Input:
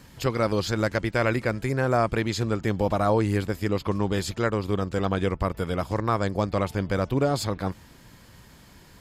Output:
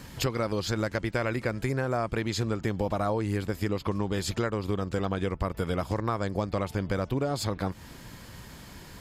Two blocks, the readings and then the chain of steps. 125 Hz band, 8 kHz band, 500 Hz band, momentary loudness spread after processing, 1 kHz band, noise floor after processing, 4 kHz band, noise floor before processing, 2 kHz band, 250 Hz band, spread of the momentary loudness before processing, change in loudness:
-3.5 dB, -1.0 dB, -4.5 dB, 16 LU, -5.0 dB, -47 dBFS, -2.0 dB, -51 dBFS, -4.5 dB, -4.0 dB, 5 LU, -4.0 dB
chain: compressor 6:1, threshold -30 dBFS, peak gain reduction 12.5 dB; gain +5 dB

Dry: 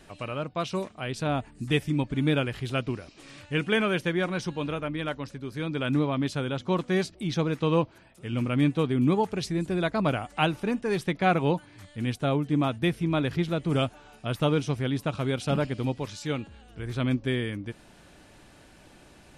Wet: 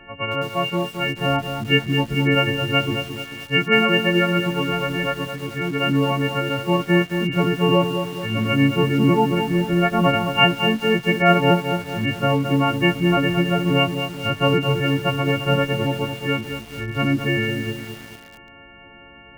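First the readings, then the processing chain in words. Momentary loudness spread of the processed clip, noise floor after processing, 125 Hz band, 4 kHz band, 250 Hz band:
8 LU, -45 dBFS, +7.0 dB, +11.5 dB, +7.0 dB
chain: frequency quantiser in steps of 4 st; brick-wall FIR low-pass 3200 Hz; lo-fi delay 0.218 s, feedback 55%, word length 7-bit, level -7 dB; gain +6 dB

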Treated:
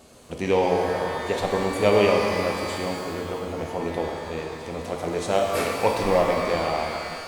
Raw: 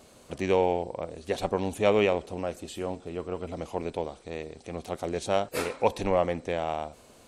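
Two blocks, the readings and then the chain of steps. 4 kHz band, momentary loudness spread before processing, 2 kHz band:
+7.5 dB, 13 LU, +8.0 dB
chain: shimmer reverb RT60 2.4 s, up +12 st, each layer -8 dB, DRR 0.5 dB; gain +2 dB

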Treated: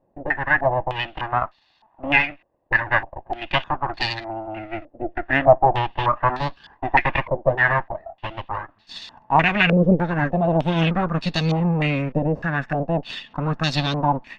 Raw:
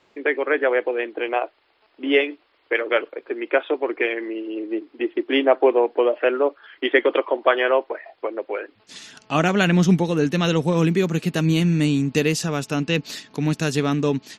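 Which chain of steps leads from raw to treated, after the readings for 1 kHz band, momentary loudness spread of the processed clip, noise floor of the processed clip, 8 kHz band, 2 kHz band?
+6.0 dB, 15 LU, -63 dBFS, under -10 dB, +3.5 dB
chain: minimum comb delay 1.1 ms; vibrato 11 Hz 23 cents; stepped low-pass 3.3 Hz 510–4200 Hz; gain -1.5 dB

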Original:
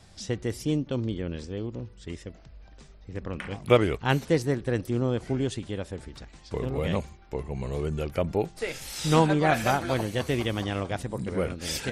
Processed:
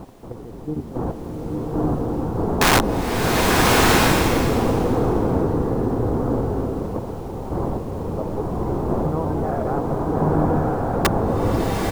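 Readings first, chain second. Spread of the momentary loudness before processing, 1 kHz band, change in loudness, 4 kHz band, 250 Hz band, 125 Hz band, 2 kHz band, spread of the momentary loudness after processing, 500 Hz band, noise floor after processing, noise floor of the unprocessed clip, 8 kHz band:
16 LU, +9.5 dB, +7.0 dB, +8.5 dB, +8.0 dB, +6.5 dB, +8.5 dB, 13 LU, +6.0 dB, -35 dBFS, -51 dBFS, +10.5 dB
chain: wind noise 560 Hz -24 dBFS; LPF 1200 Hz 24 dB/oct; frequency-shifting echo 88 ms, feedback 51%, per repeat -69 Hz, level -4 dB; level quantiser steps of 12 dB; added noise pink -56 dBFS; wrapped overs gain 9.5 dB; notch 600 Hz, Q 12; bloom reverb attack 1.26 s, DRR -4.5 dB

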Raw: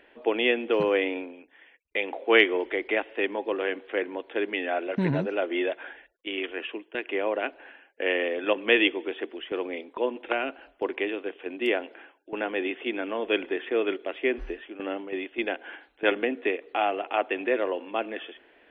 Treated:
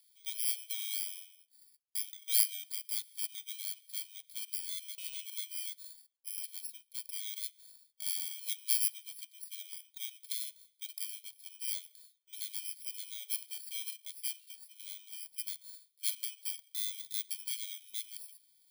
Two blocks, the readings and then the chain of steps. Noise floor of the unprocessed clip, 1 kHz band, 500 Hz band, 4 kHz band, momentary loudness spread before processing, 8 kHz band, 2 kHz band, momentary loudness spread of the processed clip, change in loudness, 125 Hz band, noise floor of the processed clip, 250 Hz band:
-61 dBFS, under -40 dB, under -40 dB, -6.0 dB, 11 LU, n/a, -24.0 dB, 13 LU, -8.5 dB, under -40 dB, -72 dBFS, under -40 dB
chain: FFT order left unsorted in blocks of 16 samples; steep high-pass 2500 Hz 48 dB/oct; gain -6 dB

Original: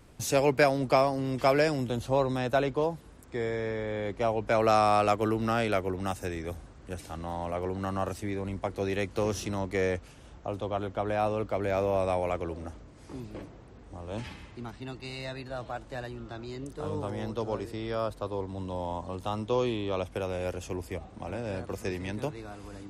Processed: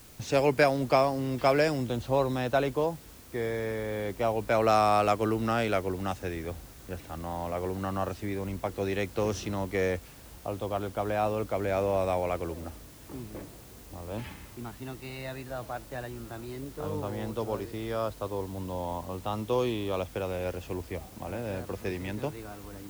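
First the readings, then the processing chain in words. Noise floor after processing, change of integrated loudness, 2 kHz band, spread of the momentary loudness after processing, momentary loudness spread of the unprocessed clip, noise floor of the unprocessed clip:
-49 dBFS, 0.0 dB, 0.0 dB, 16 LU, 16 LU, -51 dBFS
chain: low-pass opened by the level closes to 2000 Hz, open at -22 dBFS; added noise white -54 dBFS

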